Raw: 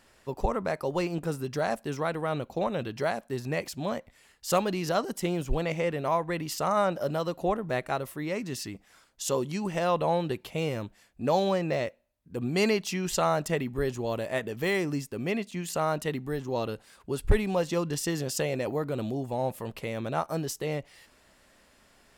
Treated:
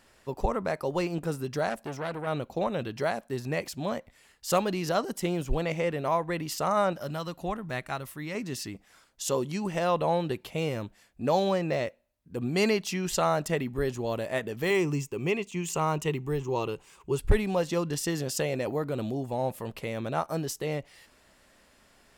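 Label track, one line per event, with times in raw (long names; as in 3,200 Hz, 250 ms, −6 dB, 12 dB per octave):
1.690000	2.270000	saturating transformer saturates under 1,400 Hz
6.930000	8.350000	parametric band 480 Hz −8.5 dB 1.5 octaves
14.700000	17.190000	EQ curve with evenly spaced ripples crests per octave 0.72, crest to trough 9 dB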